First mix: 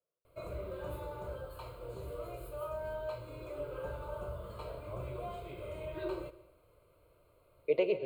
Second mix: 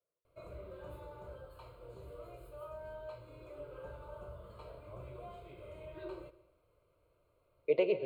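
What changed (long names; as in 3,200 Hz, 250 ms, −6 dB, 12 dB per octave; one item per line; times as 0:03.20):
background −7.0 dB
master: add high-shelf EQ 8,900 Hz −7.5 dB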